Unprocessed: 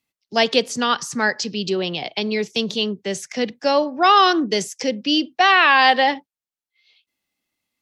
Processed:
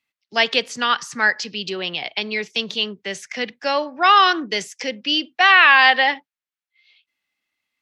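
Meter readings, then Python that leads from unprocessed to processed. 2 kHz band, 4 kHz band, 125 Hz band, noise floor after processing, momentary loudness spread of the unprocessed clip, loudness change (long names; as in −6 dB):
+4.0 dB, +1.0 dB, can't be measured, below −85 dBFS, 12 LU, +1.0 dB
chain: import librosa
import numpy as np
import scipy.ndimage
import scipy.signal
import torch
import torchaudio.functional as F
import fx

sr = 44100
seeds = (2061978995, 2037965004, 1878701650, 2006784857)

y = fx.peak_eq(x, sr, hz=2000.0, db=13.0, octaves=2.5)
y = y * 10.0 ** (-8.5 / 20.0)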